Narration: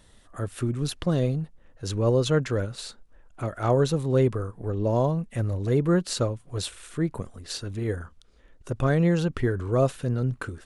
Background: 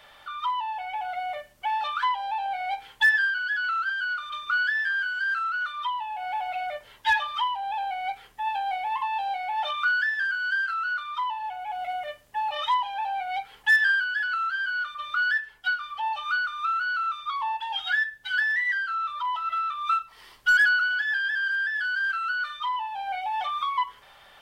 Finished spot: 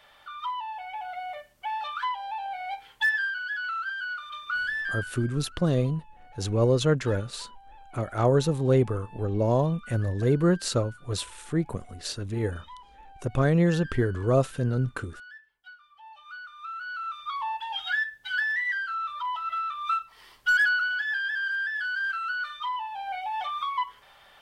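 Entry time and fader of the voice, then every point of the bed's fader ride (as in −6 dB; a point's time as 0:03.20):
4.55 s, 0.0 dB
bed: 0:04.94 −4.5 dB
0:05.32 −22.5 dB
0:15.89 −22.5 dB
0:17.33 −2.5 dB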